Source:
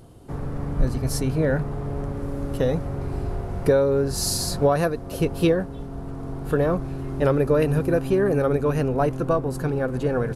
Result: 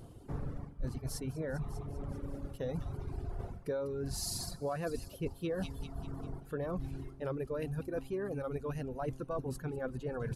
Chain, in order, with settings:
low-shelf EQ 200 Hz +3 dB
delay with a high-pass on its return 198 ms, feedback 60%, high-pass 3,100 Hz, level −8.5 dB
reversed playback
downward compressor 8 to 1, threshold −27 dBFS, peak gain reduction 16 dB
reversed playback
reverb reduction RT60 1.6 s
level −5 dB

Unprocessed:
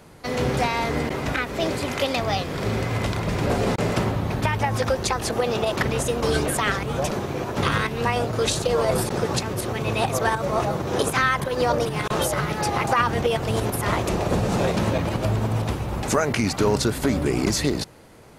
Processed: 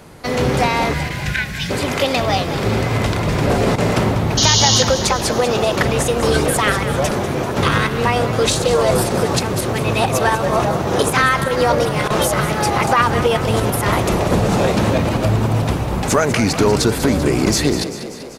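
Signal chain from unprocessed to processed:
time-frequency box erased 0:00.94–0:01.70, 210–1,400 Hz
in parallel at −4 dB: soft clipping −17 dBFS, distortion −15 dB
on the sum: sound drawn into the spectrogram noise, 0:04.37–0:04.83, 2,800–6,900 Hz −18 dBFS
echo with shifted repeats 194 ms, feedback 63%, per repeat +36 Hz, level −12 dB
level +2.5 dB

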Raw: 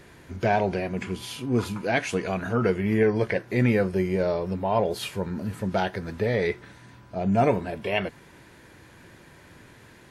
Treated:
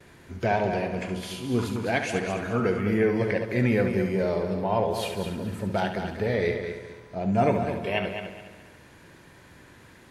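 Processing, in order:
echo machine with several playback heads 70 ms, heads first and third, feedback 47%, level −8.5 dB
noise gate with hold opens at −41 dBFS
level −2 dB

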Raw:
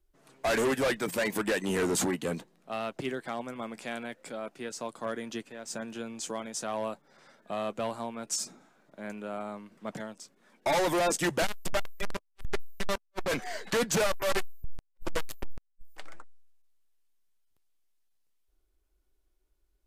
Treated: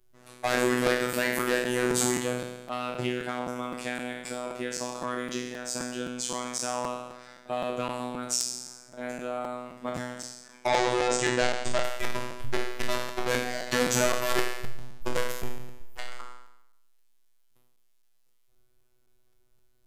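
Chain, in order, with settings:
peak hold with a decay on every bin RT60 0.84 s
phases set to zero 124 Hz
in parallel at +3 dB: downward compressor, threshold −38 dBFS, peak gain reduction 17.5 dB
0:10.67–0:11.84: on the sum: low-pass filter 7,700 Hz 24 dB per octave
regular buffer underruns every 0.26 s, samples 256, repeat, from 0:00.86

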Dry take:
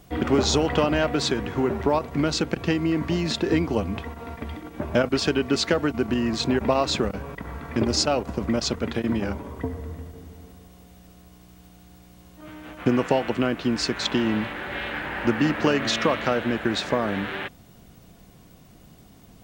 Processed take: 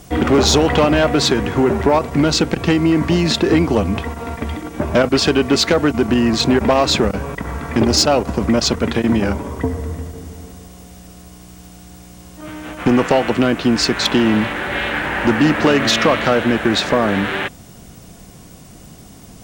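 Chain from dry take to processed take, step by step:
harmonic generator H 5 −14 dB, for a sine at −6.5 dBFS
noise in a band 4,900–10,000 Hz −56 dBFS
level +4 dB

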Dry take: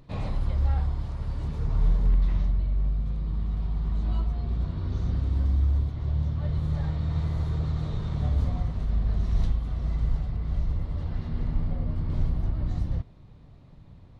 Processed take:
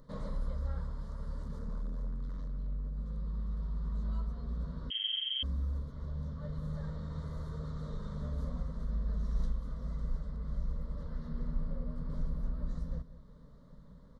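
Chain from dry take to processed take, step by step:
parametric band 500 Hz +2.5 dB 0.77 octaves
in parallel at +1 dB: downward compressor, threshold −39 dBFS, peak gain reduction 20 dB
0:01.42–0:02.97: on the sum: gain into a clipping stage and back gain 24.5 dB
phaser with its sweep stopped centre 510 Hz, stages 8
on a send: single-tap delay 191 ms −14.5 dB
0:04.90–0:05.43: on the sum: voice inversion scrambler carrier 3,200 Hz
level −7.5 dB

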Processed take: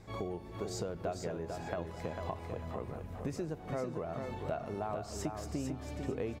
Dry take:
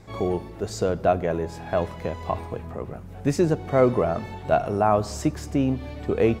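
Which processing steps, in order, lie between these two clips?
downward compressor 6 to 1, threshold −29 dBFS, peak gain reduction 15 dB
on a send: repeating echo 447 ms, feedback 27%, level −5.5 dB
on the sum: level −6 dB

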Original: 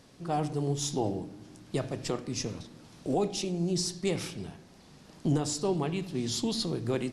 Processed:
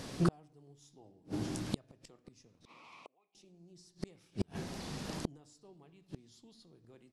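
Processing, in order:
gate with flip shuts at −29 dBFS, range −41 dB
0:02.65–0:03.35: pair of resonant band-passes 1,600 Hz, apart 1.1 octaves
level +12 dB

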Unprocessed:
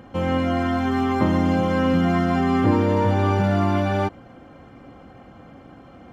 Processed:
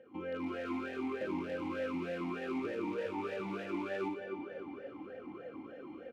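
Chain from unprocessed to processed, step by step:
automatic gain control gain up to 11.5 dB
repeating echo 273 ms, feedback 51%, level −11.5 dB
in parallel at −7 dB: wrap-around overflow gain 10.5 dB
on the sum: downward compressor 2 to 1, threshold −21 dBFS, peak gain reduction 8 dB
on a send: flutter between parallel walls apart 9.7 metres, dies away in 0.58 s
on the sum: formant filter swept between two vowels e-u 3.3 Hz
level −6.5 dB

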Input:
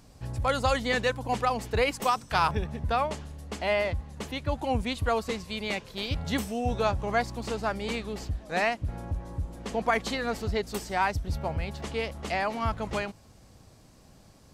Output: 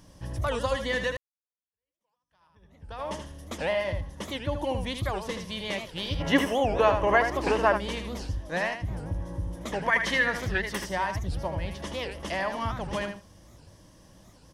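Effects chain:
downward compressor, threshold −26 dBFS, peak gain reduction 7 dB
EQ curve with evenly spaced ripples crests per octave 1.2, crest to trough 8 dB
repeating echo 79 ms, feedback 15%, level −7.5 dB
0:01.17–0:03.13: fade in exponential
0:06.21–0:07.77: gain on a spectral selection 250–3,100 Hz +10 dB
0:09.73–0:10.86: parametric band 1,900 Hz +12 dB 1 octave
wow of a warped record 78 rpm, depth 250 cents

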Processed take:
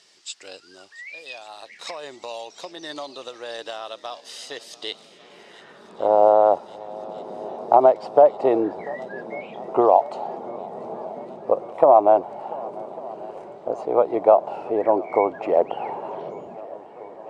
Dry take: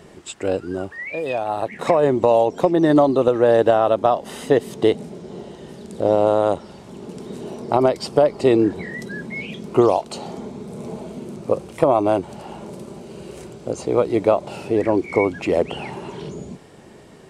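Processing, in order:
band-pass filter sweep 4,900 Hz → 760 Hz, 0:04.79–0:06.22
feedback echo with a long and a short gap by turns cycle 1,149 ms, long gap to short 1.5 to 1, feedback 68%, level −21 dB
level +6.5 dB

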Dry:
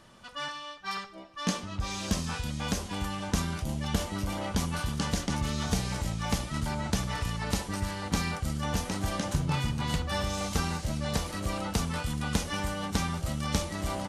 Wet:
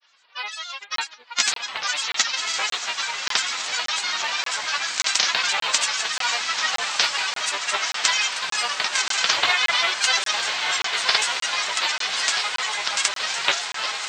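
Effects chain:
spectral envelope flattened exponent 0.6
high-pass filter 1,300 Hz 12 dB per octave
reverb reduction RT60 0.66 s
Butterworth low-pass 5,900 Hz 72 dB per octave
automatic gain control gain up to 16.5 dB
granular cloud, pitch spread up and down by 7 semitones
on a send: feedback delay with all-pass diffusion 1,221 ms, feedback 61%, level −7 dB
on the sum: regular buffer underruns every 0.58 s, samples 1,024, zero, from 0:00.96

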